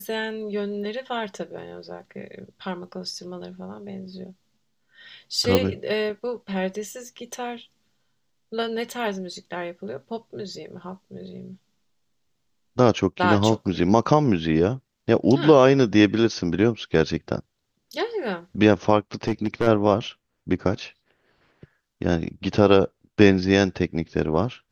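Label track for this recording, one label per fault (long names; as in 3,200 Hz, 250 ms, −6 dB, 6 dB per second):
5.550000	5.550000	click −5 dBFS
19.270000	19.670000	clipping −16 dBFS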